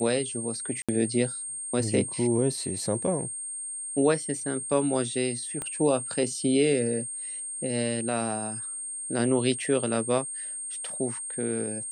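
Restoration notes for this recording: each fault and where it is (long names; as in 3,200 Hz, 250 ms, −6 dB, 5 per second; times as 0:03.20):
whistle 8,600 Hz −33 dBFS
0:00.82–0:00.89: drop-out 66 ms
0:05.62: click −19 dBFS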